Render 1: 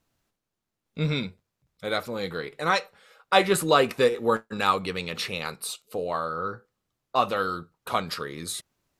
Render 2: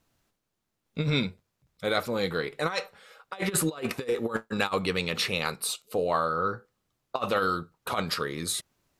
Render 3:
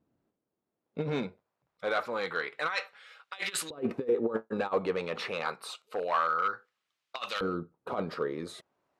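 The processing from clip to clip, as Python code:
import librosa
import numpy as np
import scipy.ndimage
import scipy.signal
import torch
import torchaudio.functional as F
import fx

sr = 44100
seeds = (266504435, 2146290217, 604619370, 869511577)

y1 = fx.over_compress(x, sr, threshold_db=-26.0, ratio=-0.5)
y2 = np.clip(10.0 ** (20.5 / 20.0) * y1, -1.0, 1.0) / 10.0 ** (20.5 / 20.0)
y2 = fx.filter_lfo_bandpass(y2, sr, shape='saw_up', hz=0.27, low_hz=260.0, high_hz=3700.0, q=0.97)
y2 = F.gain(torch.from_numpy(y2), 2.5).numpy()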